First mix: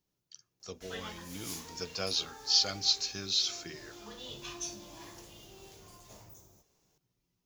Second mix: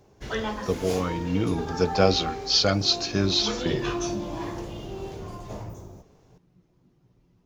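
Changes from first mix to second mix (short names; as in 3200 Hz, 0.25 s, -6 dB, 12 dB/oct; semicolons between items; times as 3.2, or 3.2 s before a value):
background: entry -0.60 s; master: remove pre-emphasis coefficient 0.9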